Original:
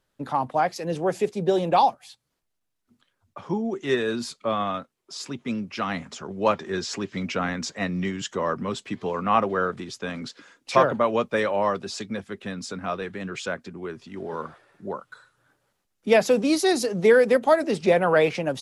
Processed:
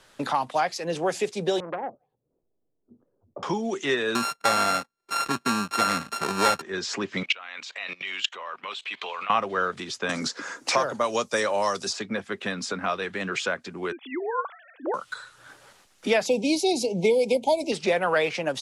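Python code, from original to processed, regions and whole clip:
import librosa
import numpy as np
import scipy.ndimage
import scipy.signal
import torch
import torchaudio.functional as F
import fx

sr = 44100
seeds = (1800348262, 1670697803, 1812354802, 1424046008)

y = fx.chain(x, sr, fx.ladder_lowpass(hz=540.0, resonance_pct=40),
    fx.transformer_sat(knee_hz=850.0), at=(1.6, 3.43))
y = fx.chain(y, sr, fx.sample_sort(block=32),
    fx.notch(hz=2900.0, q=6.3),
    fx.leveller(passes=2), at=(4.15, 6.62))
y = fx.chain(y, sr, fx.highpass(hz=810.0, slope=12),
    fx.band_shelf(hz=3100.0, db=10.5, octaves=1.1),
    fx.level_steps(step_db=23), at=(7.23, 9.3))
y = fx.chain(y, sr, fx.high_shelf_res(hz=4200.0, db=11.5, q=1.5),
    fx.band_squash(depth_pct=40), at=(10.09, 11.93))
y = fx.chain(y, sr, fx.sine_speech(),
    fx.brickwall_highpass(low_hz=240.0), at=(13.92, 14.94))
y = fx.chain(y, sr, fx.brickwall_bandstop(low_hz=990.0, high_hz=2100.0),
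    fx.low_shelf(hz=320.0, db=7.5), at=(16.26, 17.72))
y = scipy.signal.sosfilt(scipy.signal.butter(2, 9700.0, 'lowpass', fs=sr, output='sos'), y)
y = fx.low_shelf(y, sr, hz=420.0, db=-10.5)
y = fx.band_squash(y, sr, depth_pct=70)
y = y * librosa.db_to_amplitude(1.0)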